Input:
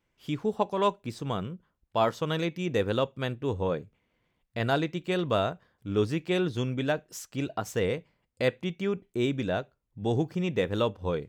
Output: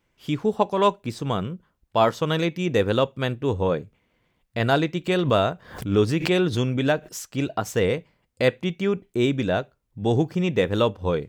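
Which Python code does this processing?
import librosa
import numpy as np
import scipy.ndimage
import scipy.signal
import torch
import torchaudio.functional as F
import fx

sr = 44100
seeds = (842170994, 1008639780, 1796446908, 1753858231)

y = fx.pre_swell(x, sr, db_per_s=100.0, at=(5.06, 7.07), fade=0.02)
y = y * 10.0 ** (6.0 / 20.0)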